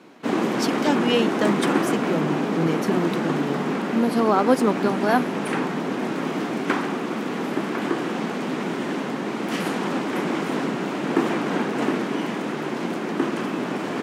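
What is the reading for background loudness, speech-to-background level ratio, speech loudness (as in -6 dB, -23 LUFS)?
-25.0 LUFS, 0.5 dB, -24.5 LUFS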